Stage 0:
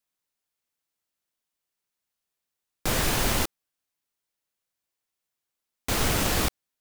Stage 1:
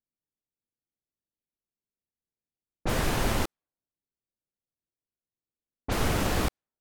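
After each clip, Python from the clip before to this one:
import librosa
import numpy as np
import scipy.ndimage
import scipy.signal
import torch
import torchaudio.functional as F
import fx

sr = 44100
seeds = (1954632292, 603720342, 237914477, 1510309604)

y = fx.env_lowpass(x, sr, base_hz=380.0, full_db=-23.0)
y = fx.high_shelf(y, sr, hz=2400.0, db=-8.5)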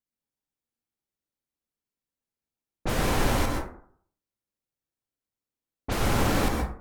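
y = fx.rev_plate(x, sr, seeds[0], rt60_s=0.57, hf_ratio=0.4, predelay_ms=110, drr_db=1.0)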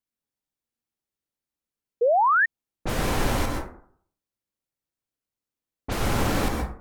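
y = fx.spec_paint(x, sr, seeds[1], shape='rise', start_s=2.01, length_s=0.45, low_hz=450.0, high_hz=1900.0, level_db=-19.0)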